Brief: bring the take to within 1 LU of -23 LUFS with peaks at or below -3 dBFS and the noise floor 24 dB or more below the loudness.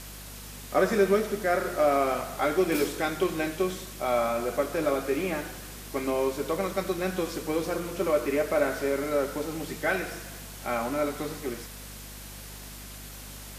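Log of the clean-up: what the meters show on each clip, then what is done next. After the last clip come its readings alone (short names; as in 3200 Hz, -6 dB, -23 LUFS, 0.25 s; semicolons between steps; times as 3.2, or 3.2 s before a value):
hum 50 Hz; harmonics up to 250 Hz; hum level -44 dBFS; noise floor -43 dBFS; noise floor target -52 dBFS; loudness -28.0 LUFS; peak -11.0 dBFS; loudness target -23.0 LUFS
-> de-hum 50 Hz, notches 5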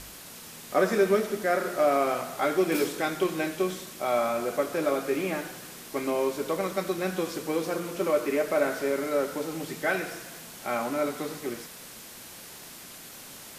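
hum none; noise floor -45 dBFS; noise floor target -52 dBFS
-> noise print and reduce 7 dB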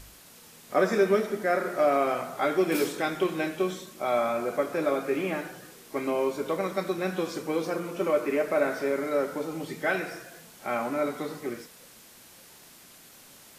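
noise floor -52 dBFS; loudness -28.0 LUFS; peak -11.0 dBFS; loudness target -23.0 LUFS
-> gain +5 dB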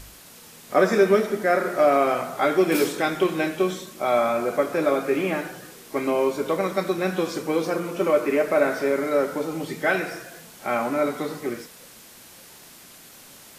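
loudness -23.0 LUFS; peak -6.0 dBFS; noise floor -47 dBFS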